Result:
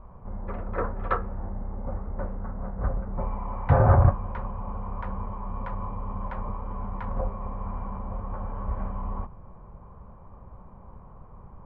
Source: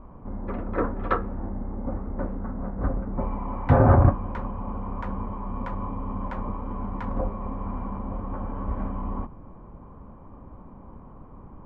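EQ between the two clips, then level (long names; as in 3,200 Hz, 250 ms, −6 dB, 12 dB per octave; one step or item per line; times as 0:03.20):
high-frequency loss of the air 210 metres
parametric band 280 Hz −14.5 dB 0.62 octaves
0.0 dB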